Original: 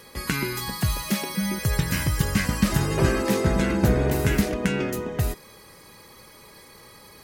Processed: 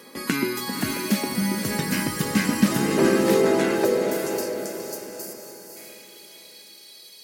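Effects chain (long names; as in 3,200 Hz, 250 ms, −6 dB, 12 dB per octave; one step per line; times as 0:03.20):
high-pass filter sweep 250 Hz → 3,800 Hz, 0:02.83–0:06.51
gain on a spectral selection 0:03.85–0:05.76, 620–4,300 Hz −29 dB
feedback delay with all-pass diffusion 554 ms, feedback 41%, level −5 dB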